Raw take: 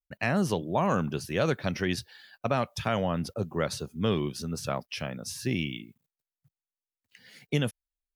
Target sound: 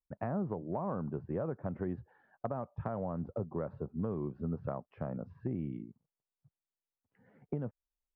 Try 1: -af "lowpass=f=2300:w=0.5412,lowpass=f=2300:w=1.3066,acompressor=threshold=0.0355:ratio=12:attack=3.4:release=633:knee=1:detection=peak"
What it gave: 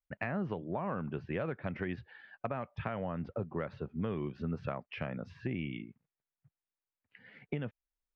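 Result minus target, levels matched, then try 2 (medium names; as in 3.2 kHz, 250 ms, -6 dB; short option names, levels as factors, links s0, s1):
2 kHz band +13.0 dB
-af "lowpass=f=1100:w=0.5412,lowpass=f=1100:w=1.3066,acompressor=threshold=0.0355:ratio=12:attack=3.4:release=633:knee=1:detection=peak"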